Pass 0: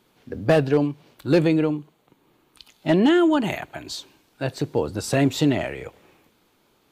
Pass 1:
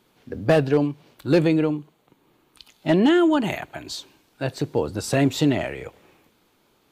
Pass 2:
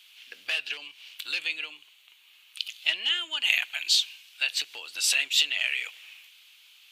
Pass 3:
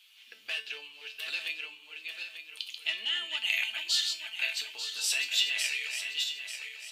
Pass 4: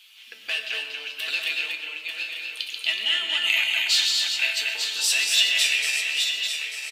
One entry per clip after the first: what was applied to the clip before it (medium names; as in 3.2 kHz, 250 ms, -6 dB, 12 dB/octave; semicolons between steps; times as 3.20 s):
no audible change
compression 6:1, threshold -25 dBFS, peak gain reduction 11.5 dB; resonant high-pass 2.8 kHz, resonance Q 3.7; trim +7.5 dB
backward echo that repeats 446 ms, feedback 59%, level -5 dB; feedback comb 220 Hz, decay 0.3 s, harmonics all, mix 80%; trim +4.5 dB
in parallel at -9 dB: saturation -27 dBFS, distortion -11 dB; on the sum: delay 236 ms -4 dB; reverberation RT60 1.2 s, pre-delay 75 ms, DRR 8 dB; trim +5 dB